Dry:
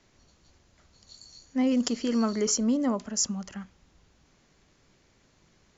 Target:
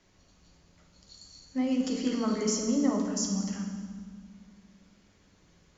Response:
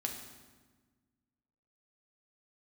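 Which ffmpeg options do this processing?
-filter_complex "[0:a]alimiter=limit=-20.5dB:level=0:latency=1:release=13[link_01];[1:a]atrim=start_sample=2205,asetrate=32634,aresample=44100[link_02];[link_01][link_02]afir=irnorm=-1:irlink=0,volume=-3dB"

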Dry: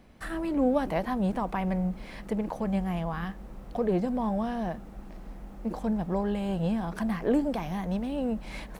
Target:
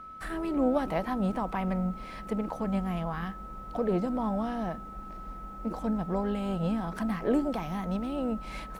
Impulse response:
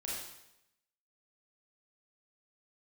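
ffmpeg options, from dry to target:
-filter_complex "[0:a]asplit=2[link_01][link_02];[link_02]asetrate=55563,aresample=44100,atempo=0.793701,volume=-16dB[link_03];[link_01][link_03]amix=inputs=2:normalize=0,aeval=exprs='val(0)+0.00891*sin(2*PI*1300*n/s)':channel_layout=same,volume=-1.5dB"

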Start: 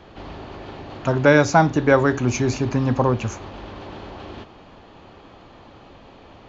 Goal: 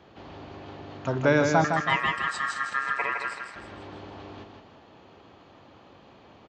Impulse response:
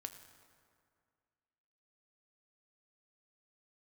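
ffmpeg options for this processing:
-filter_complex "[0:a]asettb=1/sr,asplit=3[link_01][link_02][link_03];[link_01]atrim=end=1.644[link_04];[link_02]atrim=start=1.64:end=3.56,asetpts=PTS-STARTPTS,afade=type=in:duration=0.004:curve=qsin,afade=type=out:start_time=1.916:duration=0.004:curve=qsin,aeval=exprs='val(0)*sin(2*PI*1500*n/s)':channel_layout=same[link_05];[link_03]atrim=start=3.556[link_06];[link_04][link_05]acrossfade=duration=0.004:curve1=hsin:curve2=qsin[link_07];[link_07][link_06]acrossfade=duration=0.004:curve1=qsin:curve2=hsin,highpass=81,aecho=1:1:160|320|480|640|800:0.531|0.207|0.0807|0.0315|0.0123,volume=-7.5dB"

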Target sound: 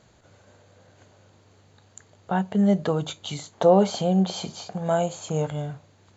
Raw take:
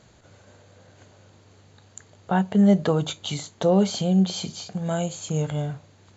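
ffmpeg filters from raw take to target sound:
ffmpeg -i in.wav -af "asetnsamples=nb_out_samples=441:pad=0,asendcmd='3.53 equalizer g 10.5;5.48 equalizer g 2',equalizer=frequency=800:width=0.67:gain=2,volume=-3.5dB" out.wav

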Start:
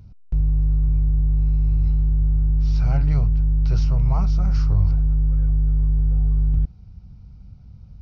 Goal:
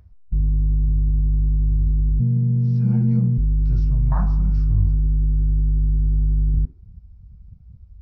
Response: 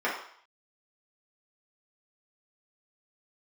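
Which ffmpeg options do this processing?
-filter_complex "[0:a]asplit=3[link_01][link_02][link_03];[link_01]afade=type=out:start_time=2.19:duration=0.02[link_04];[link_02]afreqshift=74,afade=type=in:start_time=2.19:duration=0.02,afade=type=out:start_time=3.37:duration=0.02[link_05];[link_03]afade=type=in:start_time=3.37:duration=0.02[link_06];[link_04][link_05][link_06]amix=inputs=3:normalize=0,afwtdn=0.0501,asplit=2[link_07][link_08];[1:a]atrim=start_sample=2205[link_09];[link_08][link_09]afir=irnorm=-1:irlink=0,volume=-14.5dB[link_10];[link_07][link_10]amix=inputs=2:normalize=0"

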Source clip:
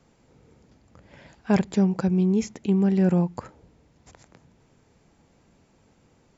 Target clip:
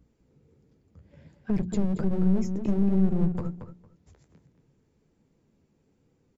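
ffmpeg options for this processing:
ffmpeg -i in.wav -filter_complex "[0:a]afftdn=noise_reduction=14:noise_floor=-37,flanger=delay=6:depth=8.1:regen=-35:speed=1.3:shape=sinusoidal,aeval=exprs='val(0)+0.000708*(sin(2*PI*60*n/s)+sin(2*PI*2*60*n/s)/2+sin(2*PI*3*60*n/s)/3+sin(2*PI*4*60*n/s)/4+sin(2*PI*5*60*n/s)/5)':channel_layout=same,aeval=exprs='0.237*(cos(1*acos(clip(val(0)/0.237,-1,1)))-cos(1*PI/2))+0.00211*(cos(5*acos(clip(val(0)/0.237,-1,1)))-cos(5*PI/2))':channel_layout=same,acontrast=53,alimiter=limit=-15dB:level=0:latency=1:release=60,lowshelf=frequency=530:width_type=q:width=1.5:gain=6.5,aeval=exprs='clip(val(0),-1,0.075)':channel_layout=same,acrossover=split=200[link_01][link_02];[link_02]acompressor=threshold=-29dB:ratio=10[link_03];[link_01][link_03]amix=inputs=2:normalize=0,bandreject=frequency=60:width_type=h:width=6,bandreject=frequency=120:width_type=h:width=6,bandreject=frequency=180:width_type=h:width=6,bandreject=frequency=240:width_type=h:width=6,bandreject=frequency=300:width_type=h:width=6,bandreject=frequency=360:width_type=h:width=6,asplit=2[link_04][link_05];[link_05]adelay=228,lowpass=frequency=3200:poles=1,volume=-8dB,asplit=2[link_06][link_07];[link_07]adelay=228,lowpass=frequency=3200:poles=1,volume=0.18,asplit=2[link_08][link_09];[link_09]adelay=228,lowpass=frequency=3200:poles=1,volume=0.18[link_10];[link_04][link_06][link_08][link_10]amix=inputs=4:normalize=0,adynamicequalizer=threshold=0.00251:dfrequency=2700:dqfactor=0.7:tfrequency=2700:tqfactor=0.7:attack=5:release=100:ratio=0.375:range=1.5:mode=boostabove:tftype=highshelf,volume=-2.5dB" out.wav

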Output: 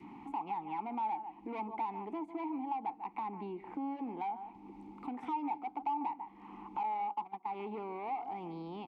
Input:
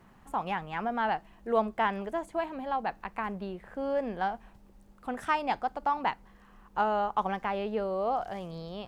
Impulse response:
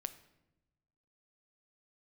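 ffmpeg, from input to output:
-filter_complex "[0:a]acrossover=split=320|1700[link_01][link_02][link_03];[link_03]alimiter=level_in=10.5dB:limit=-24dB:level=0:latency=1,volume=-10.5dB[link_04];[link_01][link_02][link_04]amix=inputs=3:normalize=0,asplit=2[link_05][link_06];[link_06]adelay=145.8,volume=-17dB,highshelf=frequency=4000:gain=-3.28[link_07];[link_05][link_07]amix=inputs=2:normalize=0,asoftclip=type=tanh:threshold=-30.5dB,asplit=3[link_08][link_09][link_10];[link_08]bandpass=frequency=300:width_type=q:width=8,volume=0dB[link_11];[link_09]bandpass=frequency=870:width_type=q:width=8,volume=-6dB[link_12];[link_10]bandpass=frequency=2240:width_type=q:width=8,volume=-9dB[link_13];[link_11][link_12][link_13]amix=inputs=3:normalize=0,acompressor=mode=upward:threshold=-49dB:ratio=2.5,adynamicequalizer=threshold=0.00126:dfrequency=750:dqfactor=0.71:tfrequency=750:tqfactor=0.71:attack=5:release=100:ratio=0.375:range=3.5:mode=boostabove:tftype=bell,acompressor=threshold=-49dB:ratio=2,asettb=1/sr,asplit=3[link_14][link_15][link_16];[link_14]atrim=end=6.834[link_17];[link_15]atrim=start=6.83:end=7.47,asetpts=PTS-STARTPTS,afade=type=in:duration=0.004:curve=qsin,afade=type=out:start_time=0.636:duration=0.004:curve=qsin,agate=range=-19dB:threshold=-47dB:ratio=16:detection=peak[link_18];[link_16]atrim=start=7.466[link_19];[link_17][link_18]acrossfade=duration=0.004:curve1=hsin:curve2=qsin[link_20];[link_20][link_19]acrossfade=duration=0.004:curve1=qsin:curve2=hsin,volume=10dB"

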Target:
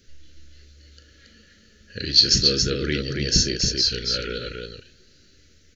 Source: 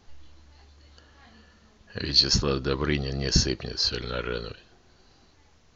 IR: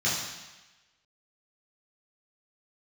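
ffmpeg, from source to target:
-af "asuperstop=centerf=890:order=8:qfactor=1.1,highshelf=frequency=4400:gain=8.5,aecho=1:1:37.9|277:0.282|0.631"

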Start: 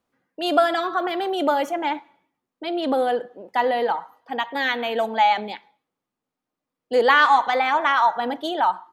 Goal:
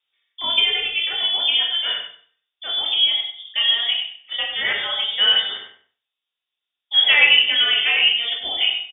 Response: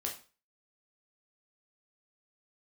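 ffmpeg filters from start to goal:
-filter_complex "[0:a]lowpass=frequency=3200:width_type=q:width=0.5098,lowpass=frequency=3200:width_type=q:width=0.6013,lowpass=frequency=3200:width_type=q:width=0.9,lowpass=frequency=3200:width_type=q:width=2.563,afreqshift=-3800,asplit=2[link_01][link_02];[link_02]adelay=96,lowpass=frequency=2600:poles=1,volume=-6dB,asplit=2[link_03][link_04];[link_04]adelay=96,lowpass=frequency=2600:poles=1,volume=0.26,asplit=2[link_05][link_06];[link_06]adelay=96,lowpass=frequency=2600:poles=1,volume=0.26[link_07];[link_01][link_03][link_05][link_07]amix=inputs=4:normalize=0[link_08];[1:a]atrim=start_sample=2205[link_09];[link_08][link_09]afir=irnorm=-1:irlink=0"

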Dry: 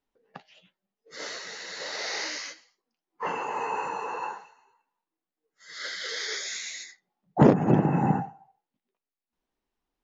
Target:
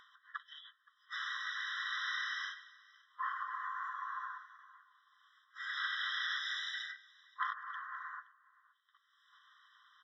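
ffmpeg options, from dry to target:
ffmpeg -i in.wav -filter_complex "[0:a]lowpass=frequency=3900:width=0.5412,lowpass=frequency=3900:width=1.3066,acompressor=mode=upward:threshold=-28dB:ratio=2.5,aecho=1:1:521:0.0668,asplit=2[link_01][link_02];[link_02]asetrate=35002,aresample=44100,atempo=1.25992,volume=-7dB[link_03];[link_01][link_03]amix=inputs=2:normalize=0,afftfilt=real='re*eq(mod(floor(b*sr/1024/1000),2),1)':imag='im*eq(mod(floor(b*sr/1024/1000),2),1)':win_size=1024:overlap=0.75,volume=-2.5dB" out.wav

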